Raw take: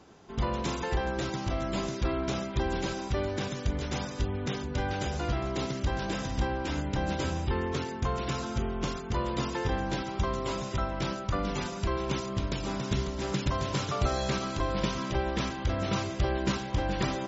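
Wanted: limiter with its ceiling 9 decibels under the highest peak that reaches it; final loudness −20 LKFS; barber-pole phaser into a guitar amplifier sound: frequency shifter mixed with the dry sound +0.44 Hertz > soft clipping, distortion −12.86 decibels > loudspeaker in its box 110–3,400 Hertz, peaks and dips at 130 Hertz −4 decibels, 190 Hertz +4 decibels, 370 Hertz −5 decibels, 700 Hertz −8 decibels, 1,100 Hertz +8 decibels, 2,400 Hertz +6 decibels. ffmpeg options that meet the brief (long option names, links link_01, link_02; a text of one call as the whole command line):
ffmpeg -i in.wav -filter_complex "[0:a]alimiter=limit=-24dB:level=0:latency=1,asplit=2[link_01][link_02];[link_02]afreqshift=0.44[link_03];[link_01][link_03]amix=inputs=2:normalize=1,asoftclip=threshold=-34dB,highpass=110,equalizer=frequency=130:width_type=q:width=4:gain=-4,equalizer=frequency=190:width_type=q:width=4:gain=4,equalizer=frequency=370:width_type=q:width=4:gain=-5,equalizer=frequency=700:width_type=q:width=4:gain=-8,equalizer=frequency=1100:width_type=q:width=4:gain=8,equalizer=frequency=2400:width_type=q:width=4:gain=6,lowpass=frequency=3400:width=0.5412,lowpass=frequency=3400:width=1.3066,volume=20.5dB" out.wav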